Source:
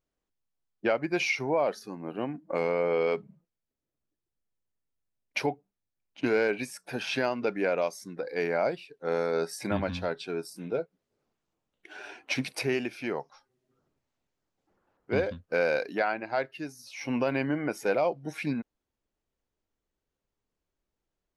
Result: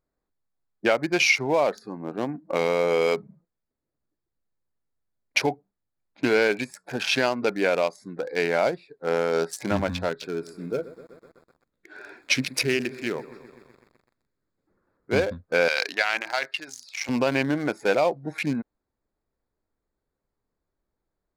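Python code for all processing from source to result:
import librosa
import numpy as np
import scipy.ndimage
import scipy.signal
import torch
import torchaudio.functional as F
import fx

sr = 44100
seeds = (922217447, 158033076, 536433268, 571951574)

y = fx.chain(x, sr, fx.peak_eq(hz=780.0, db=-10.5, octaves=0.66),
    fx.echo_crushed(ms=126, feedback_pct=80, bits=8, wet_db=-15.0), at=(10.09, 15.11))
y = fx.chain(y, sr, fx.high_shelf(hz=3000.0, db=3.0),
    fx.transient(attack_db=6, sustain_db=11),
    fx.bandpass_q(hz=3500.0, q=0.57), at=(15.68, 17.09))
y = fx.wiener(y, sr, points=15)
y = fx.high_shelf(y, sr, hz=2300.0, db=10.0)
y = y * librosa.db_to_amplitude(4.0)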